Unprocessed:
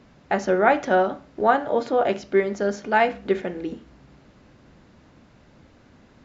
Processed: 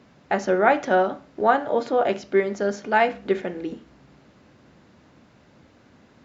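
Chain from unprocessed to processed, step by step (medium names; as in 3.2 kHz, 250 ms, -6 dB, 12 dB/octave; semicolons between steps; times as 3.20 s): high-pass 58 Hz; bass shelf 89 Hz -6 dB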